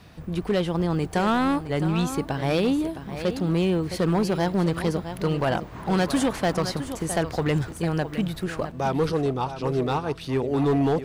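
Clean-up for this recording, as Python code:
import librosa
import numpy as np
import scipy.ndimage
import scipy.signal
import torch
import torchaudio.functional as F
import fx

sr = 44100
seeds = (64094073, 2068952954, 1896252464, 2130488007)

y = fx.fix_declip(x, sr, threshold_db=-17.0)
y = fx.fix_interpolate(y, sr, at_s=(6.09, 10.25), length_ms=3.6)
y = fx.fix_echo_inverse(y, sr, delay_ms=663, level_db=-12.0)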